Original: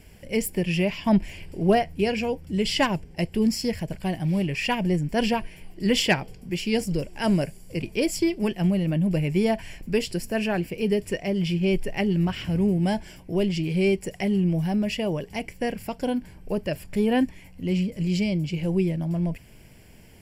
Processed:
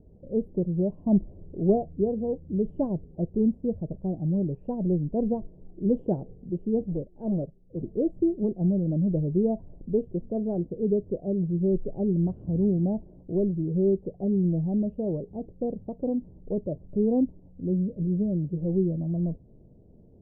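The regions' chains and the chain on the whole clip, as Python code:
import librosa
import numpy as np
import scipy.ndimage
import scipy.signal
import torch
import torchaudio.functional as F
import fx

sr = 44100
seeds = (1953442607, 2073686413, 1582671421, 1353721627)

y = fx.chain(x, sr, fx.clip_hard(threshold_db=-21.5),
    fx.upward_expand(threshold_db=-41.0, expansion=1.5), at=(6.87, 7.8))
y = scipy.signal.sosfilt(scipy.signal.cheby2(4, 60, 1900.0, 'lowpass', fs=sr, output='sos'), y)
y = fx.low_shelf(y, sr, hz=140.0, db=-4.5)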